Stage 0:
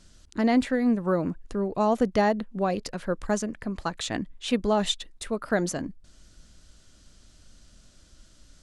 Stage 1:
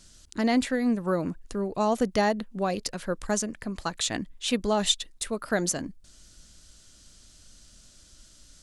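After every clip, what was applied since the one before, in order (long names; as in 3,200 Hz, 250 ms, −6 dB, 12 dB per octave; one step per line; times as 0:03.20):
high-shelf EQ 3,500 Hz +10.5 dB
level −2 dB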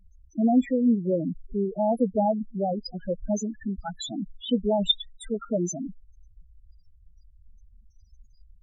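spectral peaks only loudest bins 4
level +4 dB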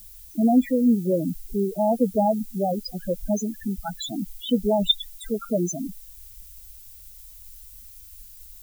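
background noise violet −49 dBFS
level +2.5 dB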